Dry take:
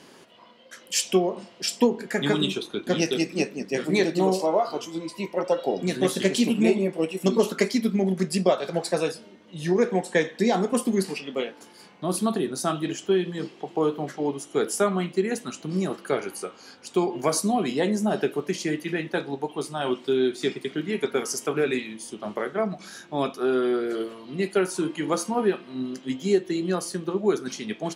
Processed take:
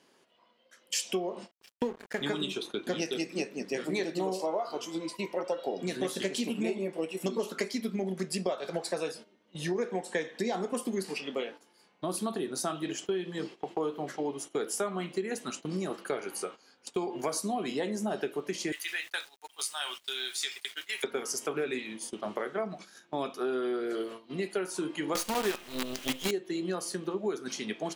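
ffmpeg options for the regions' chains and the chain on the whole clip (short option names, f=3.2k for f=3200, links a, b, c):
-filter_complex "[0:a]asettb=1/sr,asplit=3[a][b][c];[a]atrim=end=1.514[d];[b]atrim=start=1.51:end=2.21,asetpts=PTS-STARTPTS,afade=t=in:d=0.004:c=qsin,afade=t=out:st=0.696:d=0.004:c=qsin,acrossover=split=3400[e][f];[f]acompressor=threshold=-44dB:ratio=4:attack=1:release=60[g];[e][g]amix=inputs=2:normalize=0,aeval=exprs='sgn(val(0))*max(abs(val(0))-0.0178,0)':c=same[h];[c]atrim=start=2.206[i];[d][h]acrossfade=d=0.004:c1=hsin:c2=qsin[j];[j][i]acrossfade=d=0.004:c1=qsin:c2=hsin,asettb=1/sr,asplit=3[k][l][m];[k]atrim=end=18.724[n];[l]atrim=start=18.72:end=21.04,asetpts=PTS-STARTPTS,afade=t=in:d=0.004:c=qsin,afade=t=out:st=2.316:d=0.004:c=qsin,highpass=1.4k,highshelf=f=3.5k:g=11.5,aeval=exprs='val(0)*gte(abs(val(0)),0.00473)':c=same[o];[m]atrim=start=21.036[p];[n][o]acrossfade=d=0.004:c1=hsin:c2=qsin[q];[q][p]acrossfade=d=0.004:c1=qsin:c2=hsin,asettb=1/sr,asplit=3[r][s][t];[r]atrim=end=25.154[u];[s]atrim=start=25.15:end=26.31,asetpts=PTS-STARTPTS,afade=t=in:d=0.004:c=qsin,afade=t=out:st=1.156:d=0.004:c=qsin,equalizer=f=2.9k:w=0.83:g=9,acontrast=42,acrusher=bits=4:dc=4:mix=0:aa=0.000001[v];[t]atrim=start=26.306[w];[u][v]acrossfade=d=0.004:c1=hsin:c2=qsin[x];[x][w]acrossfade=d=0.004:c1=qsin:c2=hsin,agate=range=-14dB:threshold=-39dB:ratio=16:detection=peak,bass=f=250:g=-6,treble=f=4k:g=0,acompressor=threshold=-31dB:ratio=3"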